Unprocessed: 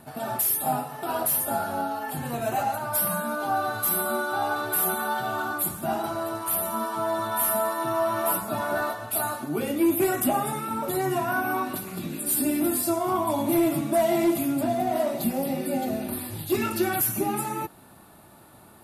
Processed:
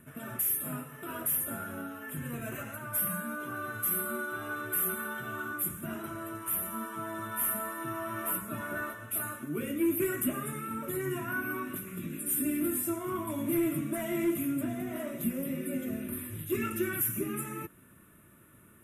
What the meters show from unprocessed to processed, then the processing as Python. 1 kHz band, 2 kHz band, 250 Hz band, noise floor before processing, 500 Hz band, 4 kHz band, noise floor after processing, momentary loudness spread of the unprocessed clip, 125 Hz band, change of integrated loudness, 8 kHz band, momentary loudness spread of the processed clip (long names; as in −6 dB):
−13.5 dB, −5.0 dB, −6.0 dB, −51 dBFS, −10.5 dB, −12.0 dB, −57 dBFS, 7 LU, −4.5 dB, −7.0 dB, −6.0 dB, 9 LU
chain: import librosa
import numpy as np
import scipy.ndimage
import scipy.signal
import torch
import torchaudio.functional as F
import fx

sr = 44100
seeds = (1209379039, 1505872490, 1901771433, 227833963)

y = fx.fixed_phaser(x, sr, hz=1900.0, stages=4)
y = y * librosa.db_to_amplitude(-4.0)